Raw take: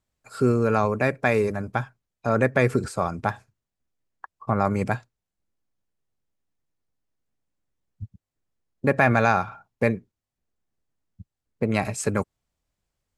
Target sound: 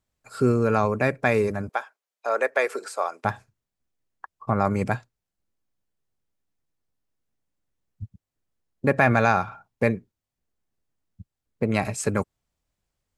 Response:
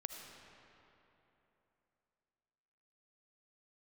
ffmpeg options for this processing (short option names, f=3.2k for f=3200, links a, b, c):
-filter_complex "[0:a]asettb=1/sr,asplit=3[a][b][c];[a]atrim=end=1.694[d];[b]atrim=start=1.69:end=3.25,asetpts=PTS-STARTPTS,afade=t=in:d=0.004:c=qsin,afade=t=out:st=1.556:d=0.004:c=qsin,highpass=f=460:w=0.5412,highpass=f=460:w=1.3066[e];[c]atrim=start=3.246[f];[d][e]acrossfade=d=0.004:c1=hsin:c2=qsin[g];[g][f]acrossfade=d=0.004:c1=qsin:c2=hsin"